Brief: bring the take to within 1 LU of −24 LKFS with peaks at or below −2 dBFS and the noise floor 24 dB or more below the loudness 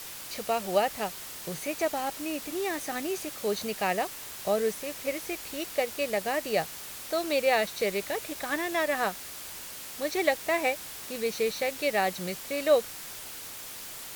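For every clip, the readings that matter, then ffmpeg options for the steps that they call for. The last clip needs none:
background noise floor −42 dBFS; target noise floor −54 dBFS; integrated loudness −30.0 LKFS; sample peak −10.5 dBFS; target loudness −24.0 LKFS
→ -af "afftdn=noise_reduction=12:noise_floor=-42"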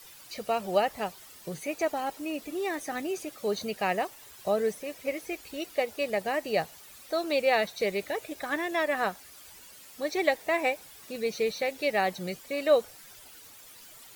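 background noise floor −51 dBFS; target noise floor −54 dBFS
→ -af "afftdn=noise_reduction=6:noise_floor=-51"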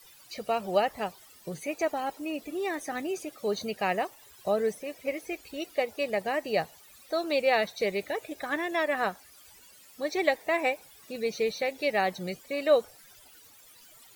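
background noise floor −55 dBFS; integrated loudness −30.0 LKFS; sample peak −10.5 dBFS; target loudness −24.0 LKFS
→ -af "volume=6dB"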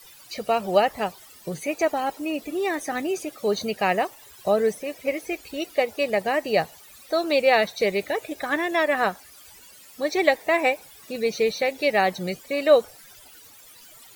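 integrated loudness −24.0 LKFS; sample peak −4.5 dBFS; background noise floor −49 dBFS

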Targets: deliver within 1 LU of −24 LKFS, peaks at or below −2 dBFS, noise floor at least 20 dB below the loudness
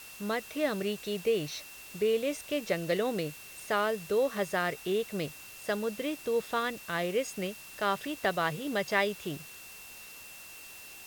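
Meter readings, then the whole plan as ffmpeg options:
interfering tone 2,700 Hz; level of the tone −50 dBFS; background noise floor −48 dBFS; target noise floor −52 dBFS; integrated loudness −32.0 LKFS; sample peak −12.0 dBFS; target loudness −24.0 LKFS
→ -af "bandreject=frequency=2700:width=30"
-af "afftdn=noise_reduction=6:noise_floor=-48"
-af "volume=8dB"

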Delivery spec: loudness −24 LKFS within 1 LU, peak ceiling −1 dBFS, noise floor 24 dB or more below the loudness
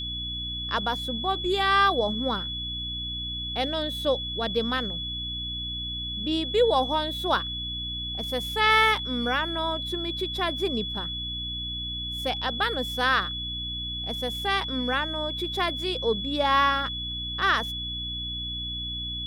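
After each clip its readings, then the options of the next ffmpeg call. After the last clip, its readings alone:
mains hum 60 Hz; hum harmonics up to 300 Hz; level of the hum −36 dBFS; interfering tone 3,400 Hz; level of the tone −31 dBFS; integrated loudness −26.5 LKFS; sample peak −7.5 dBFS; target loudness −24.0 LKFS
→ -af "bandreject=frequency=60:width_type=h:width=6,bandreject=frequency=120:width_type=h:width=6,bandreject=frequency=180:width_type=h:width=6,bandreject=frequency=240:width_type=h:width=6,bandreject=frequency=300:width_type=h:width=6"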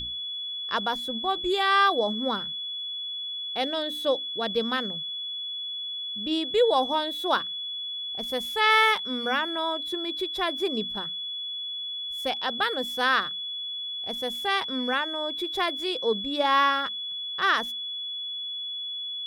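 mains hum none found; interfering tone 3,400 Hz; level of the tone −31 dBFS
→ -af "bandreject=frequency=3400:width=30"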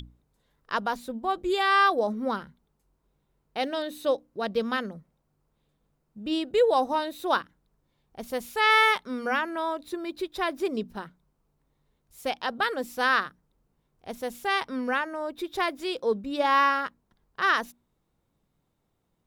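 interfering tone none found; integrated loudness −27.0 LKFS; sample peak −8.0 dBFS; target loudness −24.0 LKFS
→ -af "volume=3dB"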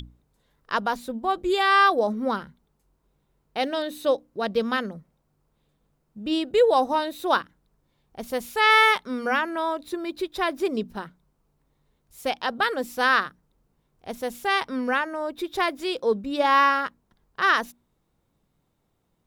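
integrated loudness −24.0 LKFS; sample peak −5.0 dBFS; background noise floor −72 dBFS

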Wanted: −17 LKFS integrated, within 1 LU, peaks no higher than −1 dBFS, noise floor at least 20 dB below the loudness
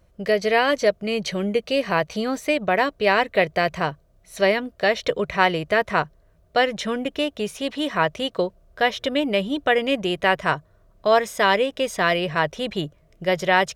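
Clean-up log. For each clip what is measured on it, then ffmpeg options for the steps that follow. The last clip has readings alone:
integrated loudness −22.5 LKFS; sample peak −2.0 dBFS; target loudness −17.0 LKFS
→ -af "volume=5.5dB,alimiter=limit=-1dB:level=0:latency=1"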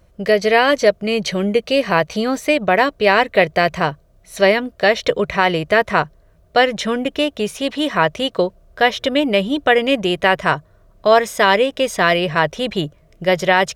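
integrated loudness −17.0 LKFS; sample peak −1.0 dBFS; background noise floor −53 dBFS

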